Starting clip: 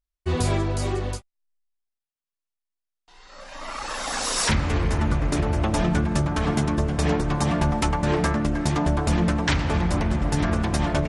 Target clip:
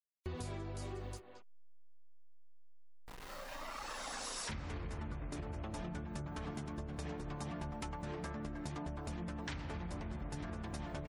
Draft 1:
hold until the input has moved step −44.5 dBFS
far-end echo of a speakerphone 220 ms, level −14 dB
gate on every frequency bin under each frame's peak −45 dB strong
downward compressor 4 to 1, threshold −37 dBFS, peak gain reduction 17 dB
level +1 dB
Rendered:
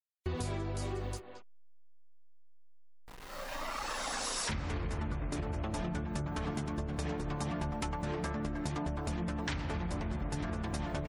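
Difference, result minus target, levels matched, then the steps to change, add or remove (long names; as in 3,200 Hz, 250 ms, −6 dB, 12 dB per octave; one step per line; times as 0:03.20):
downward compressor: peak gain reduction −6.5 dB
change: downward compressor 4 to 1, threshold −46 dBFS, peak gain reduction 23.5 dB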